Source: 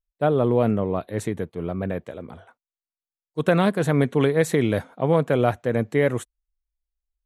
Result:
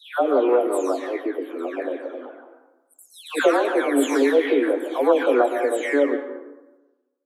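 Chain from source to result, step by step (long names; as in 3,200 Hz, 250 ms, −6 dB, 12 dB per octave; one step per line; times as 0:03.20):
every frequency bin delayed by itself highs early, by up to 477 ms
Chebyshev high-pass filter 250 Hz, order 10
dense smooth reverb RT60 1.1 s, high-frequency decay 0.5×, pre-delay 105 ms, DRR 8.5 dB
level +4 dB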